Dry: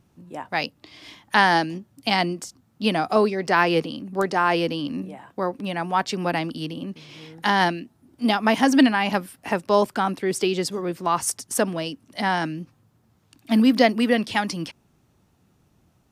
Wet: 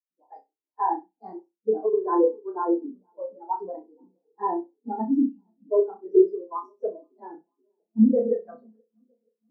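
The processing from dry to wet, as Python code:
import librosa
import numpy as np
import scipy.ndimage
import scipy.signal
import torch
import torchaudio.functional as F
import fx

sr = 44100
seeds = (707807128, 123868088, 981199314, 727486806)

p1 = fx.tape_stop_end(x, sr, length_s=2.04)
p2 = fx.peak_eq(p1, sr, hz=2700.0, db=-14.0, octaves=1.1)
p3 = fx.spec_erase(p2, sr, start_s=8.51, length_s=1.08, low_hz=320.0, high_hz=2500.0)
p4 = fx.cabinet(p3, sr, low_hz=240.0, low_slope=24, high_hz=5900.0, hz=(440.0, 1000.0, 3300.0), db=(8, 4, -8))
p5 = fx.stretch_vocoder_free(p4, sr, factor=0.59)
p6 = fx.echo_filtered(p5, sr, ms=479, feedback_pct=77, hz=2000.0, wet_db=-18.5)
p7 = 10.0 ** (-12.0 / 20.0) * np.tanh(p6 / 10.0 ** (-12.0 / 20.0))
p8 = p7 + fx.room_flutter(p7, sr, wall_m=5.5, rt60_s=0.47, dry=0)
p9 = fx.over_compress(p8, sr, threshold_db=-19.0, ratio=-0.5)
p10 = fx.spectral_expand(p9, sr, expansion=2.5)
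y = p10 * 10.0 ** (2.0 / 20.0)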